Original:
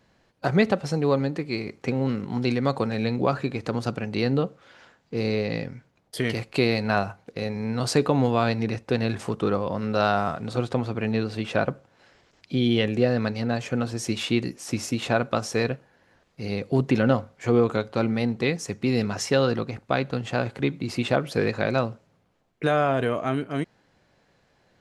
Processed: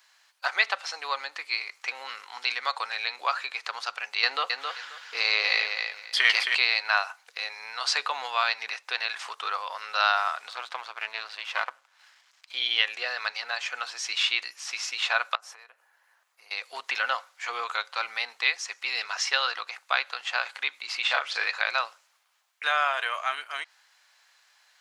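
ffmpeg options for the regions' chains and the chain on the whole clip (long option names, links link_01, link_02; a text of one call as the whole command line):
ffmpeg -i in.wav -filter_complex "[0:a]asettb=1/sr,asplit=3[link_01][link_02][link_03];[link_01]atrim=end=4.234[link_04];[link_02]atrim=start=4.23:end=6.55,asetpts=PTS-STARTPTS,afade=type=in:duration=0.004:curve=qsin,afade=type=out:start_time=2.316:duration=0.004:curve=qsin,acontrast=81,aecho=1:1:267|534|801:0.531|0.106|0.0212,atrim=end_sample=102312[link_05];[link_03]atrim=start=6.546[link_06];[link_04][link_05]acrossfade=duration=0.004:curve1=hsin:curve2=qsin[link_07];[link_07][link_06]acrossfade=duration=0.004:curve1=qsin:curve2=hsin,asettb=1/sr,asplit=3[link_08][link_09][link_10];[link_08]atrim=end=10.504[link_11];[link_09]atrim=start=10.5:end=12.54,asetpts=PTS-STARTPTS,afade=type=in:duration=0.004:curve=qsin,afade=type=out:start_time=2.036:duration=0.004:curve=qsin,aeval=exprs='if(lt(val(0),0),0.251*val(0),val(0))':channel_layout=same,highshelf=frequency=4500:gain=-6.5,bandreject=frequency=60:width_type=h:width=6,bandreject=frequency=120:width_type=h:width=6,bandreject=frequency=180:width_type=h:width=6,bandreject=frequency=240:width_type=h:width=6,bandreject=frequency=300:width_type=h:width=6[link_12];[link_10]atrim=start=12.536[link_13];[link_11][link_12]acrossfade=duration=0.004:curve1=hsin:curve2=qsin[link_14];[link_14][link_13]acrossfade=duration=0.004:curve1=qsin:curve2=hsin,asettb=1/sr,asplit=3[link_15][link_16][link_17];[link_15]atrim=end=15.354[link_18];[link_16]atrim=start=15.35:end=16.51,asetpts=PTS-STARTPTS,afade=type=in:duration=0.004:curve=qsin,afade=type=out:start_time=1.156:duration=0.004:curve=qsin,equalizer=frequency=4400:width=0.46:gain=-14,acompressor=threshold=-36dB:ratio=16:attack=3.2:release=140:knee=1:detection=peak[link_19];[link_17]atrim=start=16.506[link_20];[link_18][link_19]acrossfade=duration=0.004:curve1=hsin:curve2=qsin[link_21];[link_21][link_20]acrossfade=duration=0.004:curve1=qsin:curve2=hsin,asettb=1/sr,asplit=3[link_22][link_23][link_24];[link_22]atrim=end=21.024[link_25];[link_23]atrim=start=21.02:end=21.45,asetpts=PTS-STARTPTS,afade=type=in:duration=0.004:curve=qsin,afade=type=out:start_time=0.426:duration=0.004:curve=qsin,lowpass=frequency=8700:width=0.5412,lowpass=frequency=8700:width=1.3066,asplit=2[link_26][link_27];[link_27]adelay=36,volume=-5dB[link_28];[link_26][link_28]amix=inputs=2:normalize=0,atrim=end_sample=18963[link_29];[link_24]atrim=start=21.446[link_30];[link_25][link_29]acrossfade=duration=0.004:curve1=hsin:curve2=qsin[link_31];[link_31][link_30]acrossfade=duration=0.004:curve1=qsin:curve2=hsin,highpass=frequency=970:width=0.5412,highpass=frequency=970:width=1.3066,highshelf=frequency=3500:gain=10.5,acrossover=split=5000[link_32][link_33];[link_33]acompressor=threshold=-60dB:ratio=4:attack=1:release=60[link_34];[link_32][link_34]amix=inputs=2:normalize=0,volume=3dB" out.wav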